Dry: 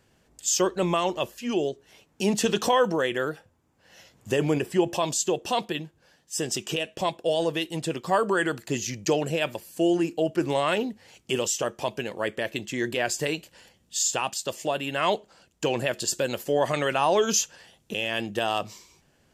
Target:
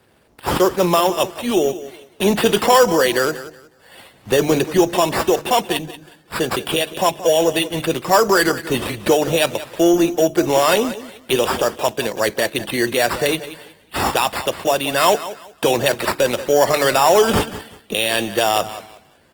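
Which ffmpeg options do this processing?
-filter_complex "[0:a]acrossover=split=320|3900[s0][s1][s2];[s1]acontrast=26[s3];[s0][s3][s2]amix=inputs=3:normalize=0,acrusher=samples=7:mix=1:aa=0.000001,bandreject=f=148.1:t=h:w=4,bandreject=f=296.2:t=h:w=4,acontrast=77,highpass=51,aecho=1:1:183|366|549:0.188|0.0452|0.0108,volume=0.891" -ar 48000 -c:a libopus -b:a 20k

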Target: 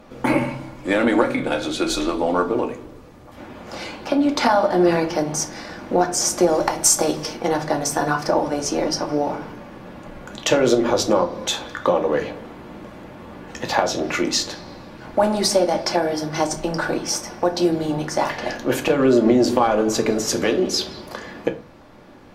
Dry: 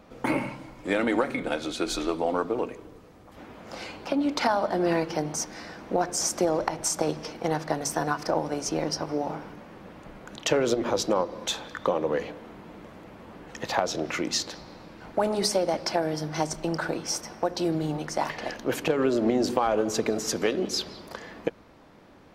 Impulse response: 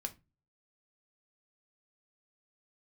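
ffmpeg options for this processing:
-filter_complex "[0:a]asettb=1/sr,asplit=3[s0][s1][s2];[s0]atrim=end=6.494[s3];[s1]atrim=start=6.49:end=7.35,asetpts=PTS-STARTPTS,afade=t=in:d=0.004:c=qsin,afade=t=out:st=0.856:d=0.004:c=qsin,aemphasis=mode=production:type=cd[s4];[s2]atrim=start=7.346[s5];[s3][s4]acrossfade=d=0.004:c1=hsin:c2=qsin[s6];[s6][s5]acrossfade=d=0.004:c1=qsin:c2=hsin[s7];[1:a]atrim=start_sample=2205,asetrate=30870,aresample=44100[s8];[s7][s8]afir=irnorm=-1:irlink=0,volume=2"

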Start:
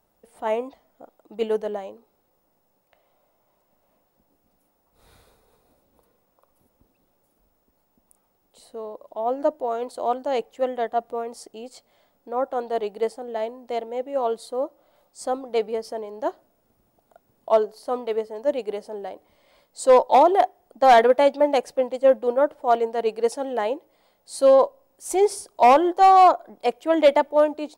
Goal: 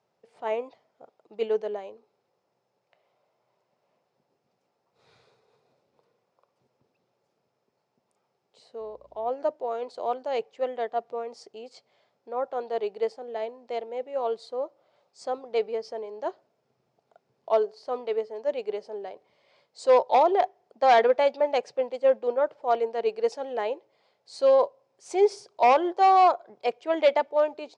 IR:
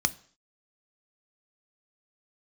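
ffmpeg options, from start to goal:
-filter_complex "[0:a]highpass=f=120:w=0.5412,highpass=f=120:w=1.3066,equalizer=f=130:t=q:w=4:g=5,equalizer=f=200:t=q:w=4:g=-5,equalizer=f=290:t=q:w=4:g=-9,equalizer=f=410:t=q:w=4:g=5,equalizer=f=2400:t=q:w=4:g=4,equalizer=f=4700:t=q:w=4:g=3,lowpass=f=6400:w=0.5412,lowpass=f=6400:w=1.3066,asettb=1/sr,asplit=3[s0][s1][s2];[s0]atrim=end=8.804[s3];[s1]atrim=start=8.8:end=9.29,asetpts=PTS-STARTPTS,afade=t=in:d=0.004:c=qsin,afade=t=out:st=0.486:d=0.004:c=qsin,aeval=exprs='val(0)+0.00112*(sin(2*PI*60*n/s)+sin(2*PI*2*60*n/s)/2+sin(2*PI*3*60*n/s)/3+sin(2*PI*4*60*n/s)/4+sin(2*PI*5*60*n/s)/5)':c=same[s4];[s2]atrim=start=9.286[s5];[s3][s4]acrossfade=d=0.004:c1=hsin:c2=qsin[s6];[s6][s5]acrossfade=d=0.004:c1=qsin:c2=hsin,volume=0.562"

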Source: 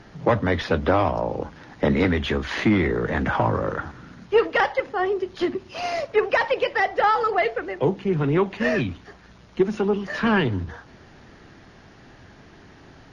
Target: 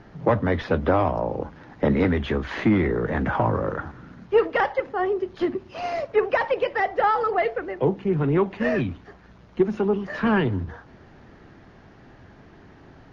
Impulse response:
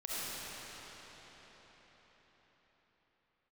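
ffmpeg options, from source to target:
-af "highshelf=f=2900:g=-12"

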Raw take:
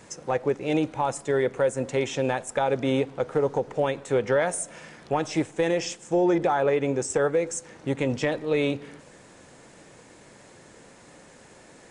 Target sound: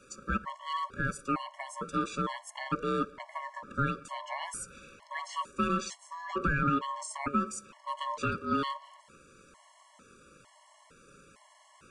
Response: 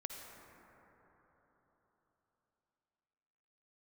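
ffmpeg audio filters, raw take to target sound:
-af "afreqshift=50,aeval=exprs='val(0)*sin(2*PI*760*n/s)':c=same,afftfilt=real='re*gt(sin(2*PI*1.1*pts/sr)*(1-2*mod(floor(b*sr/1024/560),2)),0)':imag='im*gt(sin(2*PI*1.1*pts/sr)*(1-2*mod(floor(b*sr/1024/560),2)),0)':win_size=1024:overlap=0.75,volume=0.794"

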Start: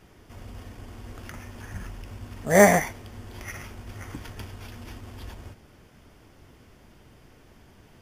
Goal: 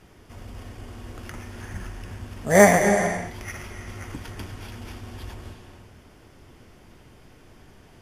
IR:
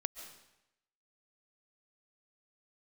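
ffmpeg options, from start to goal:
-filter_complex "[1:a]atrim=start_sample=2205,afade=t=out:st=0.35:d=0.01,atrim=end_sample=15876,asetrate=25137,aresample=44100[s0];[0:a][s0]afir=irnorm=-1:irlink=0"

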